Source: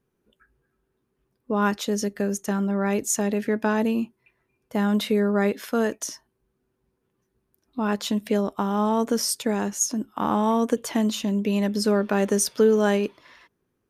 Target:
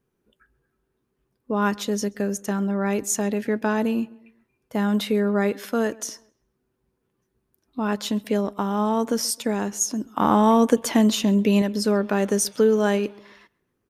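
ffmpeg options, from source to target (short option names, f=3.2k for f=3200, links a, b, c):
-filter_complex "[0:a]asettb=1/sr,asplit=3[a][b][c];[a]atrim=end=10.054[d];[b]atrim=start=10.05:end=11.62,asetpts=PTS-STARTPTS,afade=t=in:d=0.004:c=qsin,afade=t=out:st=1.566:d=0.004:c=qsin,acontrast=30[e];[c]atrim=start=11.616[f];[d][e]acrossfade=d=0.004:c1=hsin:c2=qsin[g];[g][f]acrossfade=d=0.004:c1=qsin:c2=hsin,asplit=2[h][i];[i]adelay=132,lowpass=f=2.9k:p=1,volume=-23dB,asplit=2[j][k];[k]adelay=132,lowpass=f=2.9k:p=1,volume=0.43,asplit=2[l][m];[m]adelay=132,lowpass=f=2.9k:p=1,volume=0.43[n];[h][j][l][n]amix=inputs=4:normalize=0"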